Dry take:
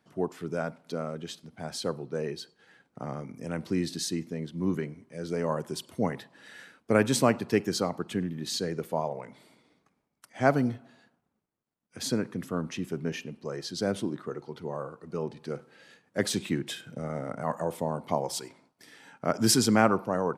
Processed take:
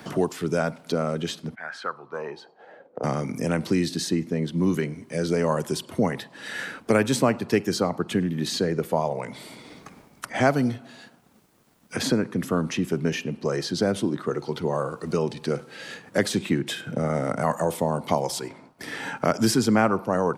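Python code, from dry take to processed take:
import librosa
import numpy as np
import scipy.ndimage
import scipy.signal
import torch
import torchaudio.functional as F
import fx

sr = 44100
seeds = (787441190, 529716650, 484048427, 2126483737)

y = fx.bandpass_q(x, sr, hz=fx.line((1.54, 1900.0), (3.03, 460.0)), q=5.2, at=(1.54, 3.03), fade=0.02)
y = fx.band_squash(y, sr, depth_pct=70)
y = y * 10.0 ** (6.0 / 20.0)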